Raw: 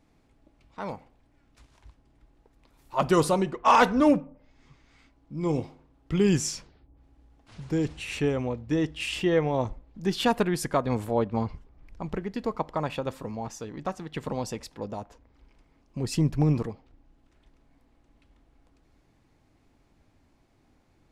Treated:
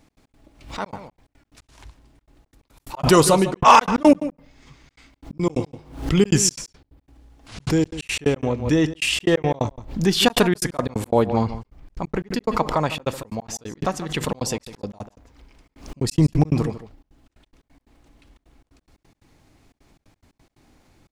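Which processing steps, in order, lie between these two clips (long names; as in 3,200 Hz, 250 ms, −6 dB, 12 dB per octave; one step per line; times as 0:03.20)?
high-shelf EQ 3,100 Hz +6.5 dB
slap from a distant wall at 26 metres, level −14 dB
gate pattern "x.x.xxxxxx.xx.x." 178 BPM −60 dB
background raised ahead of every attack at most 110 dB per second
level +7 dB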